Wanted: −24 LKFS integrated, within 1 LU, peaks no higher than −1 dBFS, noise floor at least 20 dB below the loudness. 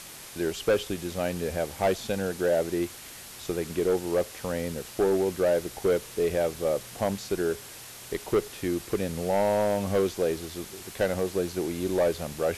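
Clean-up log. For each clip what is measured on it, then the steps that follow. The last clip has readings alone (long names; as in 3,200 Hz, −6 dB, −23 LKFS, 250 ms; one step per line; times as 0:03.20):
share of clipped samples 1.3%; peaks flattened at −18.0 dBFS; background noise floor −44 dBFS; target noise floor −49 dBFS; integrated loudness −28.5 LKFS; sample peak −18.0 dBFS; target loudness −24.0 LKFS
→ clipped peaks rebuilt −18 dBFS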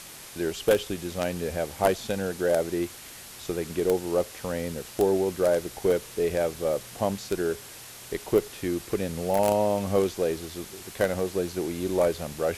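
share of clipped samples 0.0%; background noise floor −44 dBFS; target noise floor −48 dBFS
→ broadband denoise 6 dB, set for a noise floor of −44 dBFS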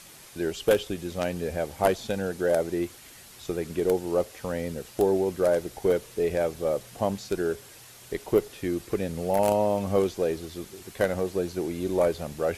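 background noise floor −49 dBFS; integrated loudness −27.5 LKFS; sample peak −9.0 dBFS; target loudness −24.0 LKFS
→ level +3.5 dB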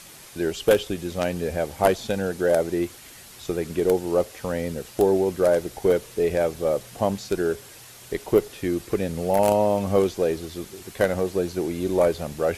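integrated loudness −24.0 LKFS; sample peak −5.5 dBFS; background noise floor −45 dBFS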